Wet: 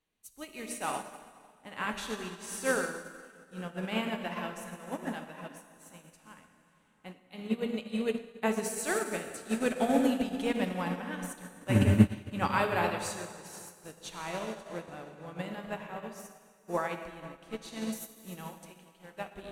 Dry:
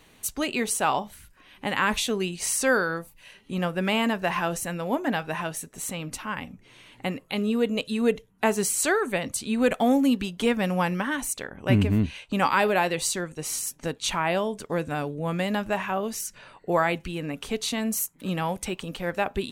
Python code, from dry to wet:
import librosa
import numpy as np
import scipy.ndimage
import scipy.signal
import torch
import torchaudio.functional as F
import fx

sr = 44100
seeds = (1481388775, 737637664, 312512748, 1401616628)

y = fx.low_shelf(x, sr, hz=380.0, db=-7.5, at=(18.5, 19.11))
y = fx.rev_plate(y, sr, seeds[0], rt60_s=4.1, hf_ratio=0.75, predelay_ms=0, drr_db=0.0)
y = fx.upward_expand(y, sr, threshold_db=-33.0, expansion=2.5)